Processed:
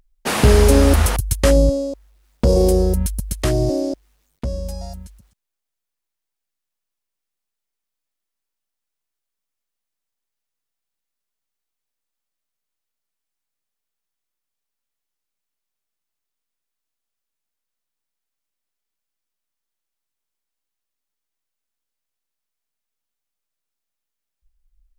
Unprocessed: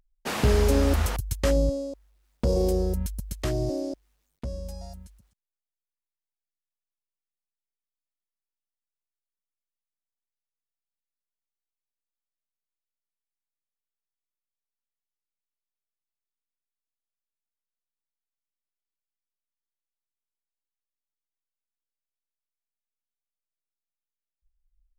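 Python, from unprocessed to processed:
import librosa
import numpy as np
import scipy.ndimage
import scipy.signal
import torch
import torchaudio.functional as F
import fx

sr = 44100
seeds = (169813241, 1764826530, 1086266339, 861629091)

y = fx.dynamic_eq(x, sr, hz=9800.0, q=3.0, threshold_db=-57.0, ratio=4.0, max_db=7)
y = y * librosa.db_to_amplitude(9.0)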